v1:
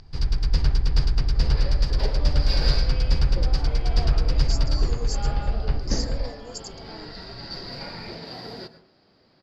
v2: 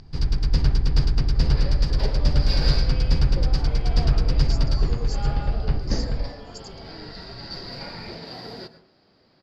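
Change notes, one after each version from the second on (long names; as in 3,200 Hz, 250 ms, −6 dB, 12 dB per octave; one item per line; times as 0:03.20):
speech: add resonant band-pass 2,800 Hz, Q 1
first sound: add parametric band 210 Hz +6.5 dB 1.9 octaves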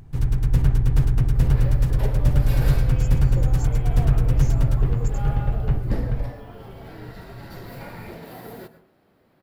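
speech: entry −1.50 s
first sound: add parametric band 120 Hz +12 dB 0.26 octaves
master: remove low-pass with resonance 4,800 Hz, resonance Q 14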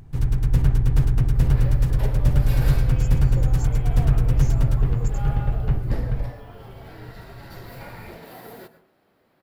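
second sound: add low-shelf EQ 320 Hz −7 dB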